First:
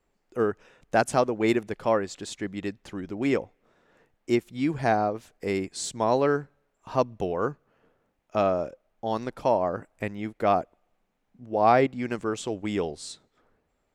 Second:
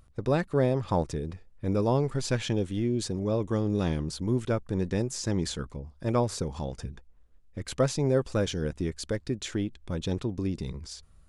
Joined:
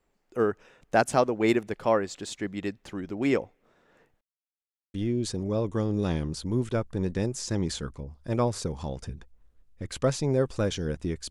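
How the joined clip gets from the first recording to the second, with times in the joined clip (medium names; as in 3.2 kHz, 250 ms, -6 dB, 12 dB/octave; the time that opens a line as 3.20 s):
first
4.21–4.94 s: mute
4.94 s: go over to second from 2.70 s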